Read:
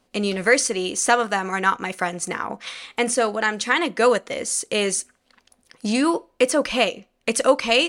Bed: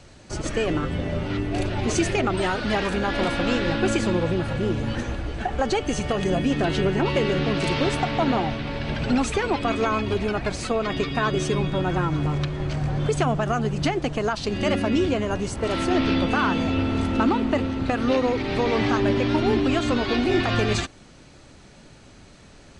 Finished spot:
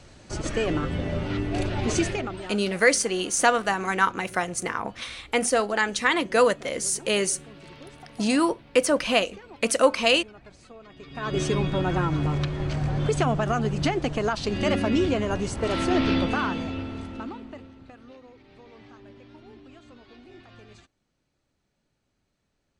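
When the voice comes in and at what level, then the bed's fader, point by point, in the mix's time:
2.35 s, -2.0 dB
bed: 2.01 s -1.5 dB
2.75 s -22.5 dB
10.97 s -22.5 dB
11.38 s -1 dB
16.16 s -1 dB
18.19 s -27.5 dB

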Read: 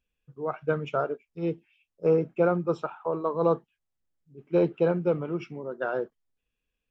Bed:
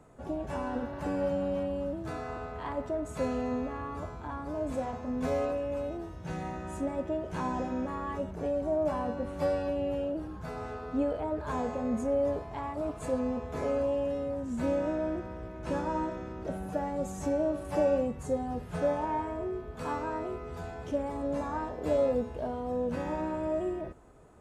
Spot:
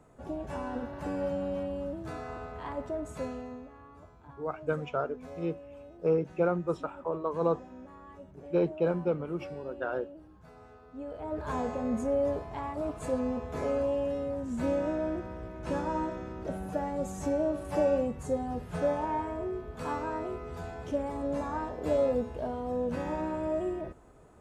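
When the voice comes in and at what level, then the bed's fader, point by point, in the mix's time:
4.00 s, -4.0 dB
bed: 3.09 s -2 dB
3.72 s -14.5 dB
10.94 s -14.5 dB
11.40 s 0 dB

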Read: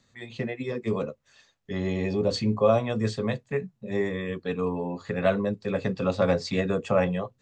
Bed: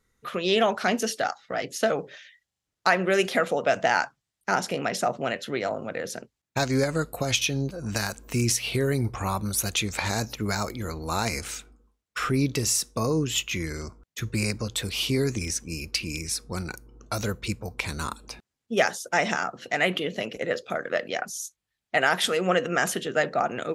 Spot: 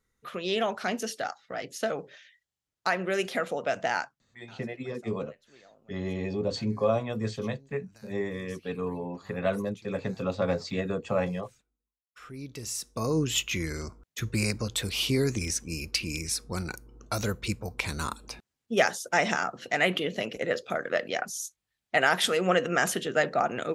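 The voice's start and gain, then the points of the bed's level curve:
4.20 s, -4.5 dB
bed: 3.98 s -6 dB
4.52 s -29 dB
11.82 s -29 dB
13.18 s -1 dB

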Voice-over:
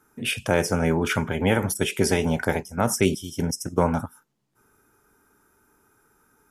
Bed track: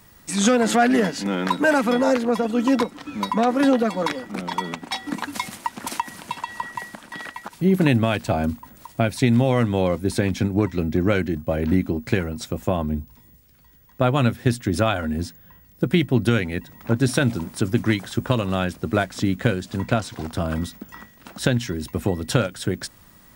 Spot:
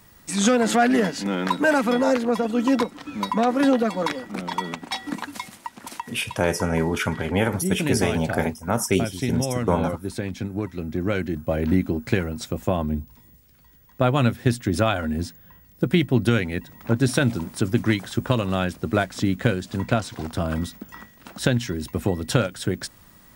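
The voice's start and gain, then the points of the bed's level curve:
5.90 s, -0.5 dB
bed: 5.09 s -1 dB
5.51 s -7.5 dB
10.76 s -7.5 dB
11.52 s -0.5 dB

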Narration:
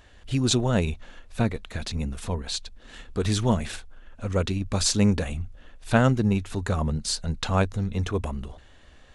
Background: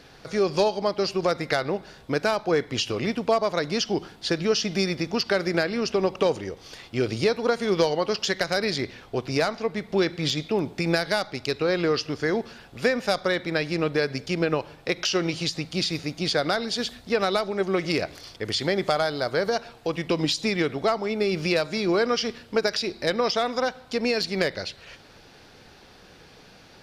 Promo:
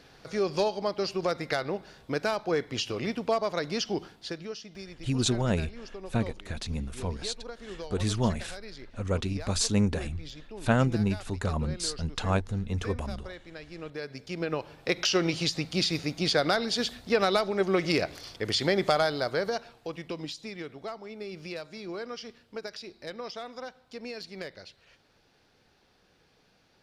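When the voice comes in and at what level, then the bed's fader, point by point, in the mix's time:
4.75 s, -4.0 dB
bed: 4.04 s -5 dB
4.64 s -19 dB
13.59 s -19 dB
14.95 s -1 dB
19.05 s -1 dB
20.44 s -15 dB

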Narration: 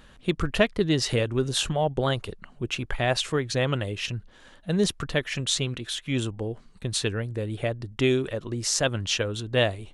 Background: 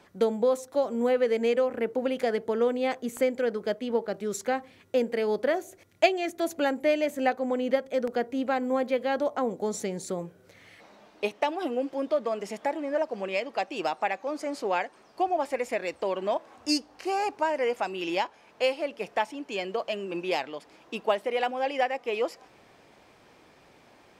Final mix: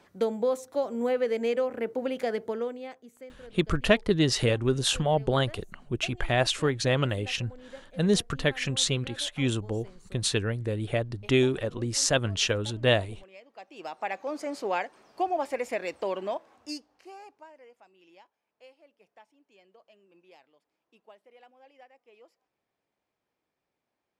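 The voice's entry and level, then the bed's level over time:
3.30 s, 0.0 dB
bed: 2.46 s -2.5 dB
3.16 s -21 dB
13.46 s -21 dB
14.17 s -1.5 dB
16.14 s -1.5 dB
17.73 s -28 dB

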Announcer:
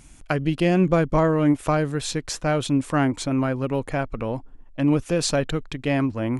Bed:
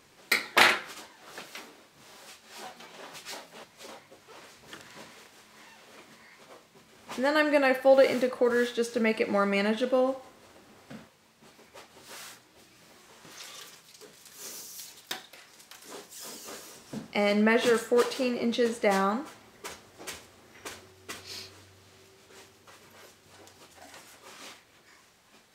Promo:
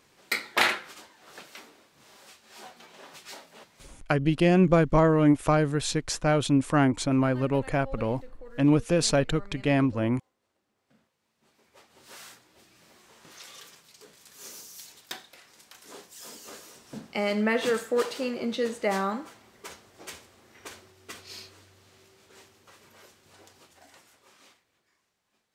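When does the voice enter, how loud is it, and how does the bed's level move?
3.80 s, -1.0 dB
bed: 3.76 s -3 dB
4.12 s -23 dB
10.74 s -23 dB
12.14 s -2 dB
23.50 s -2 dB
25.00 s -17 dB

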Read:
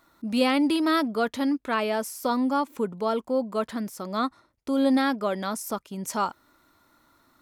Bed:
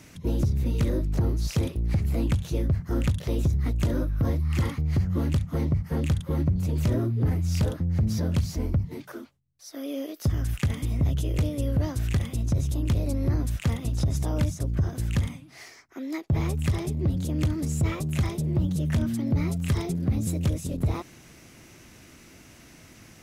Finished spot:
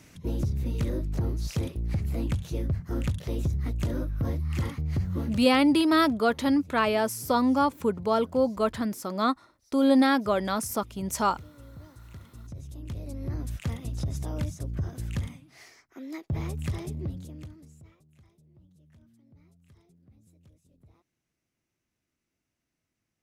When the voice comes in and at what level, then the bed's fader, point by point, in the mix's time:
5.05 s, +1.5 dB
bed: 5.20 s -4 dB
5.63 s -21.5 dB
12.09 s -21.5 dB
13.51 s -6 dB
16.97 s -6 dB
18.05 s -33.5 dB

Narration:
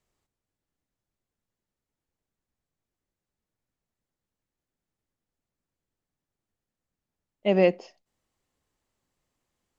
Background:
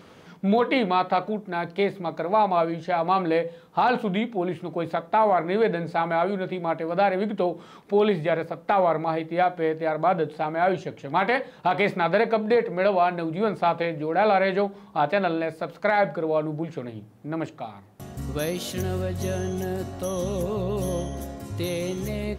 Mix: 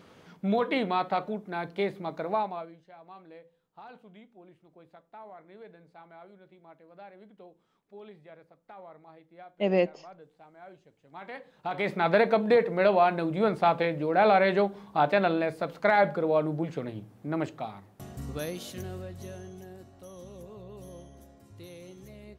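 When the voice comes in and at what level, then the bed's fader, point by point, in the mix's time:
2.15 s, -4.0 dB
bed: 2.32 s -5.5 dB
2.87 s -27 dB
10.96 s -27 dB
12.10 s -1 dB
17.68 s -1 dB
19.83 s -18.5 dB

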